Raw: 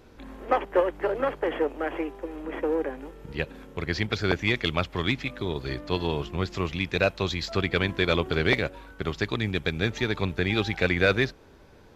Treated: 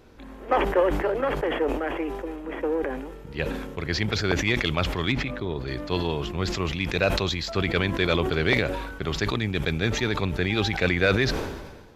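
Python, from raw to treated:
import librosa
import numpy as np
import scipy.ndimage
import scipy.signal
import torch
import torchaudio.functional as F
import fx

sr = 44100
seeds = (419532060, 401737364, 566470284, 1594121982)

y = fx.high_shelf(x, sr, hz=3300.0, db=-10.5, at=(5.12, 5.68))
y = fx.sustainer(y, sr, db_per_s=44.0)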